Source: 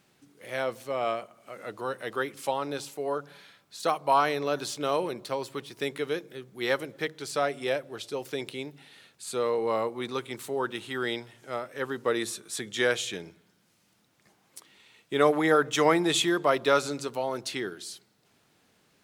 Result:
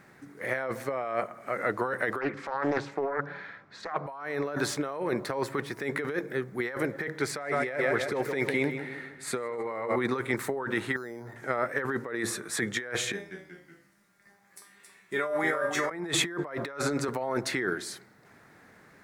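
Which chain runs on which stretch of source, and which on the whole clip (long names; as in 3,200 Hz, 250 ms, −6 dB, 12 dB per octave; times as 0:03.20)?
0:02.21–0:04.07: high-frequency loss of the air 160 metres + highs frequency-modulated by the lows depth 0.35 ms
0:07.21–0:09.96: parametric band 2,100 Hz +6.5 dB 0.27 octaves + repeating echo 153 ms, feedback 49%, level −11 dB + one half of a high-frequency compander decoder only
0:10.96–0:11.36: low-pass filter 1,200 Hz + downward compressor 20 to 1, threshold −45 dBFS + bad sample-rate conversion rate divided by 8×, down filtered, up hold
0:13.12–0:15.91: high-shelf EQ 3,000 Hz +9 dB + tuned comb filter 200 Hz, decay 0.4 s, mix 90% + delay with pitch and tempo change per echo 186 ms, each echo −1 semitone, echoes 3, each echo −6 dB
whole clip: high shelf with overshoot 2,400 Hz −8 dB, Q 3; compressor whose output falls as the input rises −35 dBFS, ratio −1; parametric band 3,600 Hz +3 dB 0.52 octaves; level +4 dB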